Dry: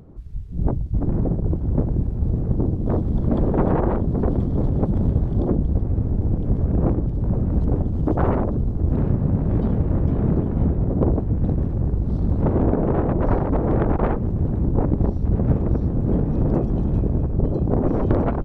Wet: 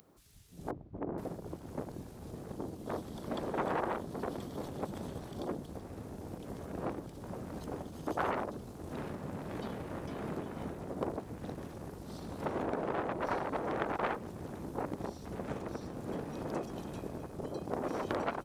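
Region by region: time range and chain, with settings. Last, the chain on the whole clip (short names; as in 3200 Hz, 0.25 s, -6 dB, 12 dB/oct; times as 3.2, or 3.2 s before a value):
0.7–1.18 self-modulated delay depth 0.74 ms + LPF 1100 Hz + dynamic EQ 400 Hz, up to +6 dB, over -40 dBFS, Q 0.71
whole clip: differentiator; notches 60/120 Hz; gain +11 dB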